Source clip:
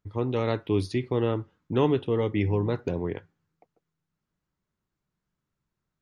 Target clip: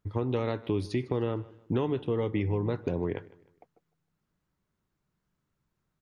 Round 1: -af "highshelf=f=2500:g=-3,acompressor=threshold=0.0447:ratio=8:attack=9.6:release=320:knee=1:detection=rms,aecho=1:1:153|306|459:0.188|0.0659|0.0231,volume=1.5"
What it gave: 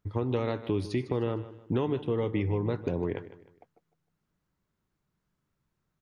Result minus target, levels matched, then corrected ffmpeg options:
echo-to-direct +6 dB
-af "highshelf=f=2500:g=-3,acompressor=threshold=0.0447:ratio=8:attack=9.6:release=320:knee=1:detection=rms,aecho=1:1:153|306|459:0.0944|0.033|0.0116,volume=1.5"

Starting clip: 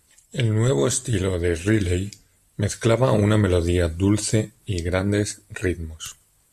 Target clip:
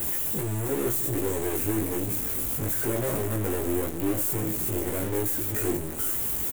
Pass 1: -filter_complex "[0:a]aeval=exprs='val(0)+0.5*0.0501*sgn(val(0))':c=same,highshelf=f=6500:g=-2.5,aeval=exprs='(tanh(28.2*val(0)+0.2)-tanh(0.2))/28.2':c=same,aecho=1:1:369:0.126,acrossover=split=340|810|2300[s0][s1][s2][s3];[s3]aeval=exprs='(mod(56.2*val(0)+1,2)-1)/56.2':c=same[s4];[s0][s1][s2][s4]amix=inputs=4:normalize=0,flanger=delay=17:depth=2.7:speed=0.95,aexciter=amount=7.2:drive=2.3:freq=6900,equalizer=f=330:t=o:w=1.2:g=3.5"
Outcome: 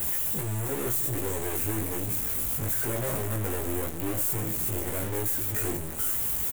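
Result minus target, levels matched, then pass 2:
250 Hz band -4.5 dB
-filter_complex "[0:a]aeval=exprs='val(0)+0.5*0.0501*sgn(val(0))':c=same,highshelf=f=6500:g=-2.5,aeval=exprs='(tanh(28.2*val(0)+0.2)-tanh(0.2))/28.2':c=same,aecho=1:1:369:0.126,acrossover=split=340|810|2300[s0][s1][s2][s3];[s3]aeval=exprs='(mod(56.2*val(0)+1,2)-1)/56.2':c=same[s4];[s0][s1][s2][s4]amix=inputs=4:normalize=0,flanger=delay=17:depth=2.7:speed=0.95,aexciter=amount=7.2:drive=2.3:freq=6900,equalizer=f=330:t=o:w=1.2:g=10"

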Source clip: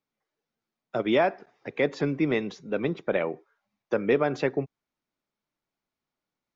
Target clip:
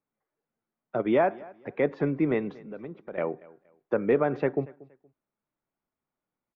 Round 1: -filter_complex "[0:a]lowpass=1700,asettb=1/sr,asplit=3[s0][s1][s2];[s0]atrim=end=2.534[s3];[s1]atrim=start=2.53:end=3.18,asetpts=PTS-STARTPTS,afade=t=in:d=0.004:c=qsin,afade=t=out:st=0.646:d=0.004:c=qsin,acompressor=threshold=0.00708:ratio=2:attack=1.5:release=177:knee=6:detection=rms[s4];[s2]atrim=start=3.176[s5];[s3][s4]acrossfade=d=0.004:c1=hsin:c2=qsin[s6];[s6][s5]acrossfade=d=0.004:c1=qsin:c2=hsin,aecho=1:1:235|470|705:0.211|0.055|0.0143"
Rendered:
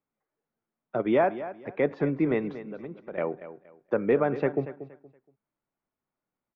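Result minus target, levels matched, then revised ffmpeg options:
echo-to-direct +8.5 dB
-filter_complex "[0:a]lowpass=1700,asettb=1/sr,asplit=3[s0][s1][s2];[s0]atrim=end=2.534[s3];[s1]atrim=start=2.53:end=3.18,asetpts=PTS-STARTPTS,afade=t=in:d=0.004:c=qsin,afade=t=out:st=0.646:d=0.004:c=qsin,acompressor=threshold=0.00708:ratio=2:attack=1.5:release=177:knee=6:detection=rms[s4];[s2]atrim=start=3.176[s5];[s3][s4]acrossfade=d=0.004:c1=hsin:c2=qsin[s6];[s6][s5]acrossfade=d=0.004:c1=qsin:c2=hsin,aecho=1:1:235|470:0.0794|0.0207"

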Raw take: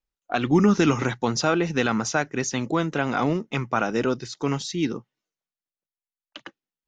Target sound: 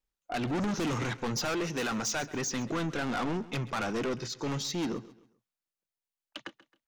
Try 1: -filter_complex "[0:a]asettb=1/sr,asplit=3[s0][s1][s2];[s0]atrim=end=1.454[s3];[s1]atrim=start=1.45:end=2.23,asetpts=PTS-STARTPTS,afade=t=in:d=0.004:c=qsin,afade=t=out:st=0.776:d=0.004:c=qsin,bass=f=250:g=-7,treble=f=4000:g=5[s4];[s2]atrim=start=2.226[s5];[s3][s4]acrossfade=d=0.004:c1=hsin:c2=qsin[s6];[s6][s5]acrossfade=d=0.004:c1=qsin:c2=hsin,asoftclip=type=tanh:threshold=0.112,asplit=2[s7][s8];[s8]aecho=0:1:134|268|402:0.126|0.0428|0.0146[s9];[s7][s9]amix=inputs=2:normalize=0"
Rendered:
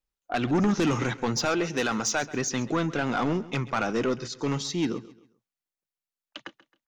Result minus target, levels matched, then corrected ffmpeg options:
saturation: distortion -6 dB
-filter_complex "[0:a]asettb=1/sr,asplit=3[s0][s1][s2];[s0]atrim=end=1.454[s3];[s1]atrim=start=1.45:end=2.23,asetpts=PTS-STARTPTS,afade=t=in:d=0.004:c=qsin,afade=t=out:st=0.776:d=0.004:c=qsin,bass=f=250:g=-7,treble=f=4000:g=5[s4];[s2]atrim=start=2.226[s5];[s3][s4]acrossfade=d=0.004:c1=hsin:c2=qsin[s6];[s6][s5]acrossfade=d=0.004:c1=qsin:c2=hsin,asoftclip=type=tanh:threshold=0.0376,asplit=2[s7][s8];[s8]aecho=0:1:134|268|402:0.126|0.0428|0.0146[s9];[s7][s9]amix=inputs=2:normalize=0"

